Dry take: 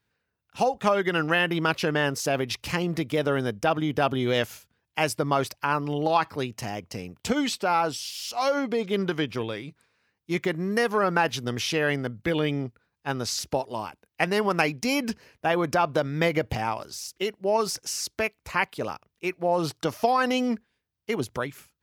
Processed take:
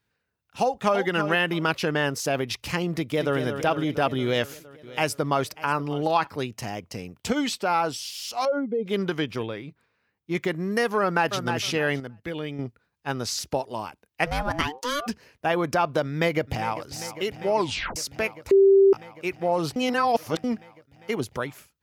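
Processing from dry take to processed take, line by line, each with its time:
0.61–1.03 echo throw 0.33 s, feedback 20%, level -9 dB
2.97–3.38 echo throw 0.23 s, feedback 70%, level -8 dB
4.24–6.27 echo 0.591 s -18.5 dB
8.45–8.86 spectral contrast raised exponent 1.9
9.46–10.35 bell 8300 Hz -11 dB 2 oct
11–11.45 echo throw 0.31 s, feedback 20%, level -6.5 dB
12–12.59 gain -7 dB
14.25–15.06 ring modulator 310 Hz -> 980 Hz
16.07–16.86 echo throw 0.4 s, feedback 85%, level -14 dB
17.56 tape stop 0.40 s
18.51–18.93 bleep 391 Hz -12 dBFS
19.76–20.44 reverse

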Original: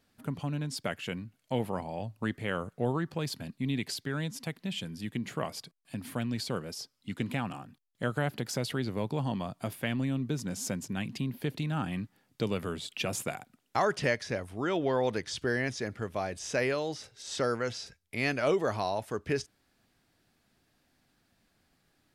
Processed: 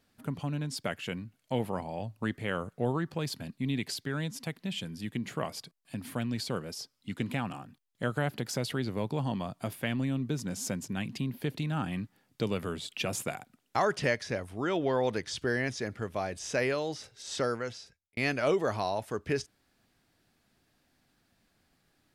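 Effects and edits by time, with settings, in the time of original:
17.39–18.17 fade out

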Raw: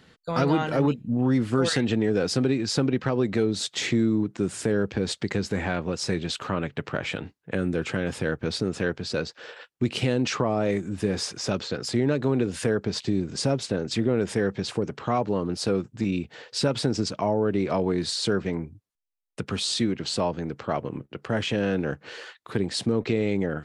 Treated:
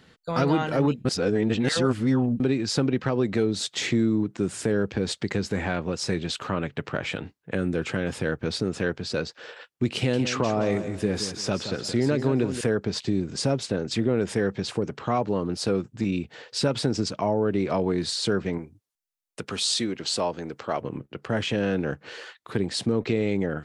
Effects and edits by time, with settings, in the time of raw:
1.05–2.4 reverse
9.96–12.61 feedback echo 0.172 s, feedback 31%, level -10 dB
18.58–20.81 tone controls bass -8 dB, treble +4 dB

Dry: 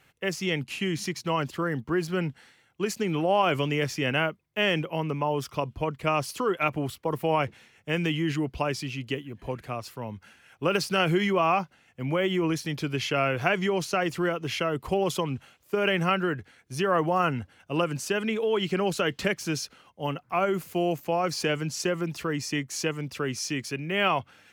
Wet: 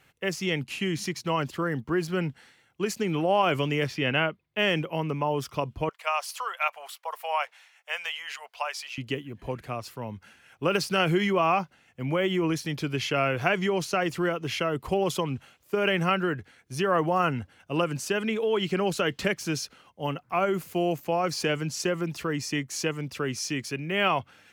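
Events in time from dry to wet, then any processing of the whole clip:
3.87–4.59 resonant high shelf 5000 Hz -7.5 dB, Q 1.5
5.89–8.98 inverse Chebyshev high-pass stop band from 340 Hz

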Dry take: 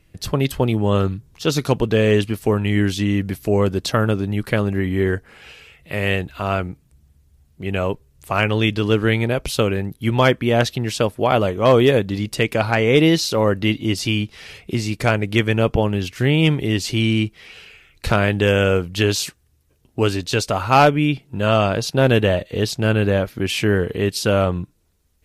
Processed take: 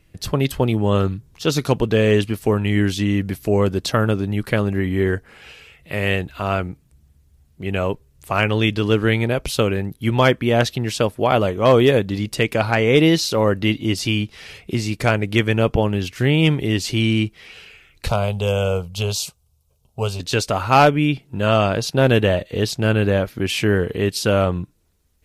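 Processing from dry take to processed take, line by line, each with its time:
18.08–20.2 fixed phaser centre 740 Hz, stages 4

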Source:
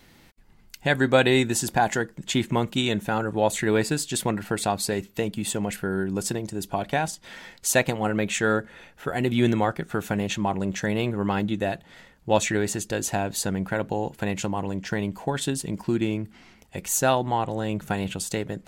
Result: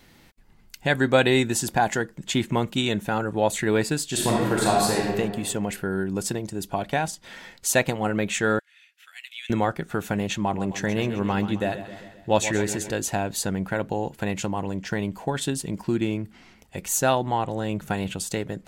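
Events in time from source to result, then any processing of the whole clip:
4.05–5.06 reverb throw, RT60 1.5 s, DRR -3.5 dB
8.59–9.5 ladder high-pass 2000 Hz, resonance 35%
10.4–12.92 feedback echo 0.131 s, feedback 57%, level -12 dB

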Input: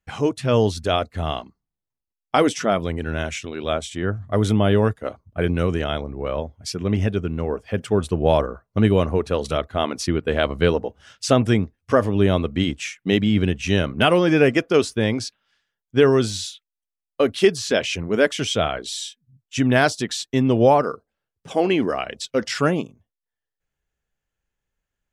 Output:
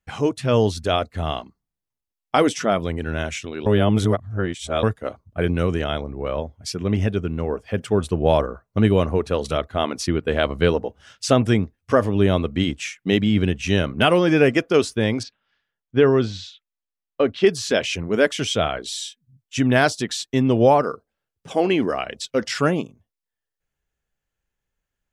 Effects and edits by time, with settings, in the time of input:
3.66–4.83 reverse
15.23–17.47 air absorption 190 m

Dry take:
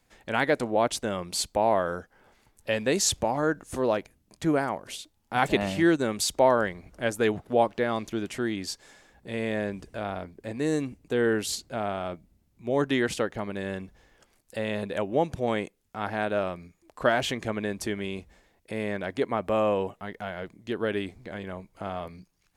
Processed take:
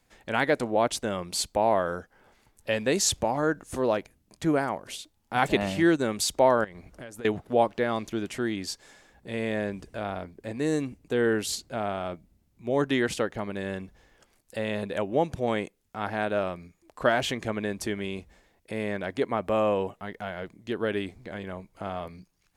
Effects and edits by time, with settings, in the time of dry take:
6.64–7.25 compressor 16:1, threshold -37 dBFS

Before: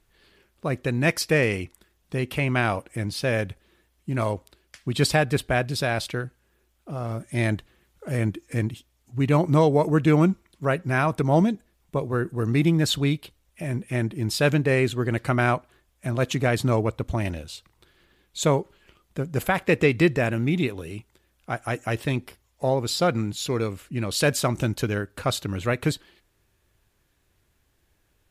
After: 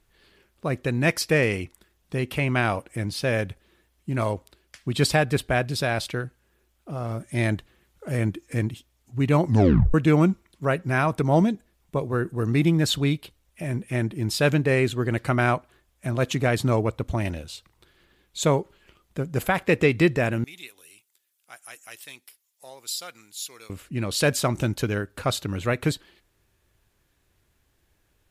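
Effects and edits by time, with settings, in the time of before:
9.44 tape stop 0.50 s
20.44–23.7 differentiator

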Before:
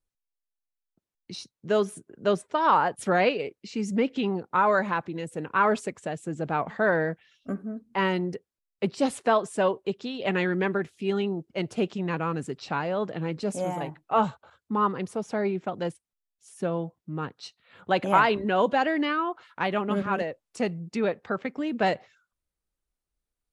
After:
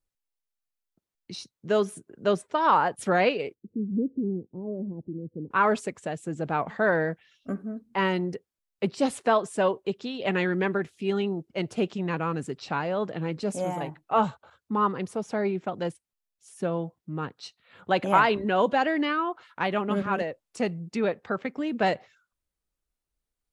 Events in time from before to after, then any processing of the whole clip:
3.54–5.51 inverse Chebyshev low-pass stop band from 1300 Hz, stop band 60 dB

